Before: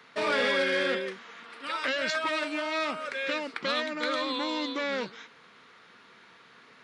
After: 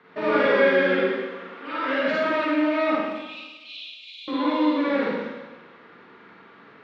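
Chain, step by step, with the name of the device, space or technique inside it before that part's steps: 2.95–4.28 s: steep high-pass 2.5 kHz 96 dB/octave; phone in a pocket (low-pass 3.1 kHz 12 dB/octave; peaking EQ 300 Hz +5.5 dB 0.83 oct; treble shelf 2.4 kHz -9.5 dB); Schroeder reverb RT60 1.2 s, DRR -7 dB

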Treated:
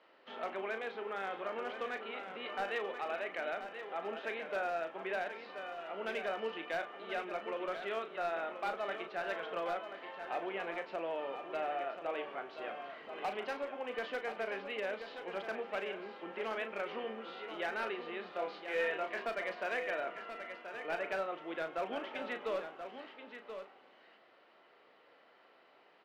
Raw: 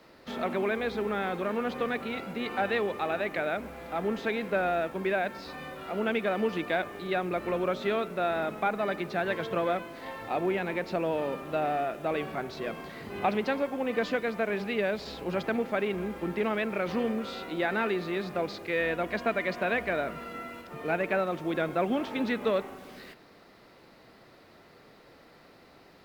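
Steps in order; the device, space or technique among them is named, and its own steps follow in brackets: megaphone (band-pass 480–2600 Hz; peaking EQ 3 kHz +10 dB 0.21 oct; hard clipper -23.5 dBFS, distortion -20 dB; doubling 36 ms -9 dB); 18.33–19.25 s: doubling 26 ms -4.5 dB; delay 1031 ms -9 dB; trim -7 dB

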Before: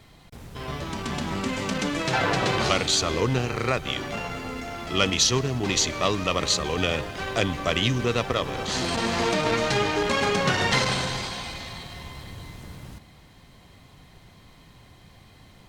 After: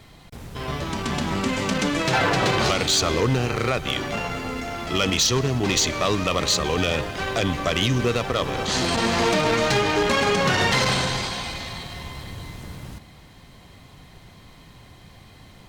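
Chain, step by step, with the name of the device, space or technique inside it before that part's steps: limiter into clipper (peak limiter -13 dBFS, peak gain reduction 5 dB; hard clipper -18 dBFS, distortion -19 dB); trim +4 dB

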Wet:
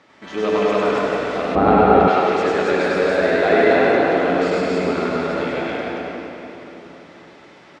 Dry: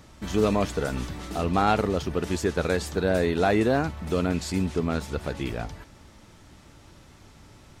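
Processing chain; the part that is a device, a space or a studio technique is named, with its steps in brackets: station announcement (band-pass 330–3600 Hz; peaking EQ 2 kHz +4 dB 0.44 oct; loudspeakers at several distances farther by 34 m -1 dB, 95 m -1 dB; reverberation RT60 3.6 s, pre-delay 70 ms, DRR -2.5 dB); 1.55–2.08 s: tilt EQ -4 dB/octave; trim +1.5 dB

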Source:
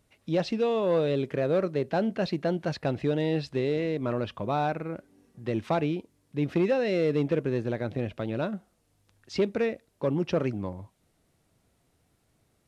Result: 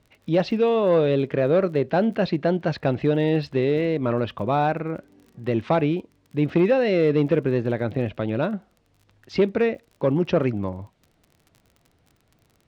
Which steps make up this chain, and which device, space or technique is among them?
lo-fi chain (low-pass 3.9 kHz 12 dB/octave; wow and flutter 29 cents; crackle 31 per s -47 dBFS); trim +6 dB

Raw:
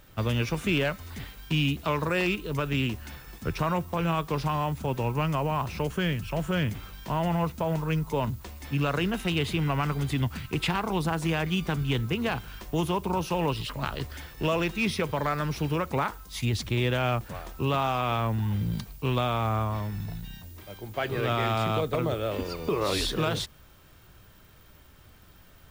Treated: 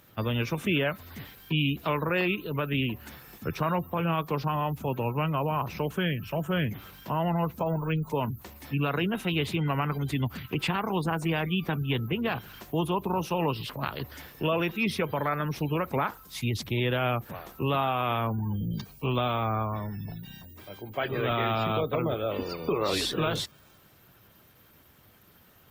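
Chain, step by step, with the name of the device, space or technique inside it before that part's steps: 8.00–8.97 s: dynamic bell 570 Hz, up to -4 dB, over -42 dBFS, Q 7; noise-suppressed video call (high-pass 110 Hz 12 dB/octave; spectral gate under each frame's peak -30 dB strong; Opus 20 kbps 48 kHz)

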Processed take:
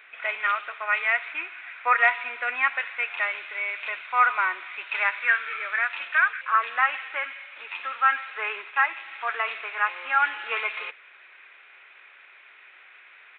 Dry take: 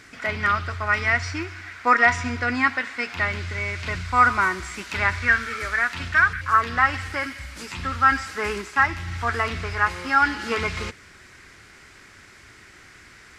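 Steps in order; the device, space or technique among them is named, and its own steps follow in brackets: musical greeting card (resampled via 8 kHz; high-pass 540 Hz 24 dB/octave; peaking EQ 2.5 kHz +10 dB 0.24 oct); trim -3.5 dB

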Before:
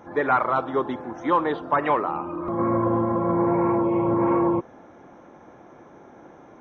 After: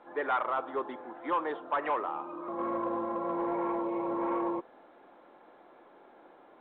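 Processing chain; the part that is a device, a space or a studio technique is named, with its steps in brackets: telephone (band-pass 380–3200 Hz; saturation -13.5 dBFS, distortion -21 dB; trim -7 dB; A-law 64 kbps 8 kHz)

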